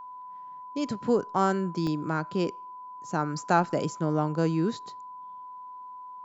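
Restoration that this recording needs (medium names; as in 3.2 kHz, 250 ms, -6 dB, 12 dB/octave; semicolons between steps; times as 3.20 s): band-stop 1 kHz, Q 30; interpolate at 1.87 s, 1 ms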